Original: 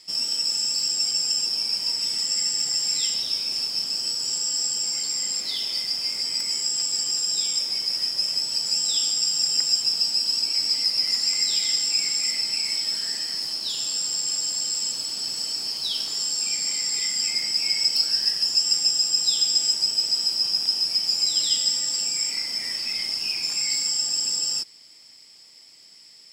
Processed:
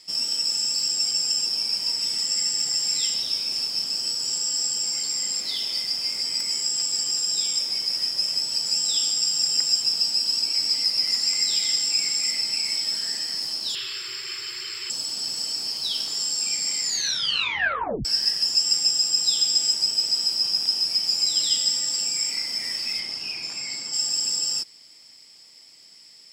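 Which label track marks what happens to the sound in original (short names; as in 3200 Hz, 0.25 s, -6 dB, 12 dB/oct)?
13.750000	14.900000	EQ curve 120 Hz 0 dB, 260 Hz -23 dB, 370 Hz +9 dB, 640 Hz -21 dB, 1200 Hz +6 dB, 2200 Hz +12 dB, 4200 Hz +1 dB, 7200 Hz -16 dB, 12000 Hz -5 dB
16.820000	16.820000	tape stop 1.23 s
22.990000	23.920000	LPF 4300 Hz -> 2300 Hz 6 dB/oct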